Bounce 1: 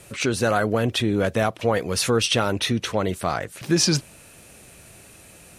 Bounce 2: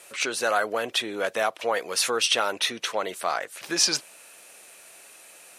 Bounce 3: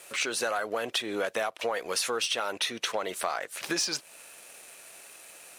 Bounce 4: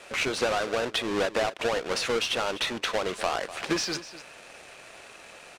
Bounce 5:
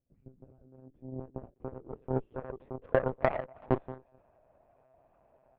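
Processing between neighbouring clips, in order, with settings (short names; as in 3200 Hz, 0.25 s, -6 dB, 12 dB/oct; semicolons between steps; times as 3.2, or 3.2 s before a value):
HPF 600 Hz 12 dB/oct
sample leveller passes 1; compressor 6:1, threshold -27 dBFS, peak gain reduction 12.5 dB
half-waves squared off; air absorption 75 m; echo 0.248 s -15 dB
low-pass sweep 140 Hz -> 720 Hz, 0.11–3.67; monotone LPC vocoder at 8 kHz 130 Hz; added harmonics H 3 -12 dB, 7 -33 dB, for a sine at -11 dBFS; gain +2.5 dB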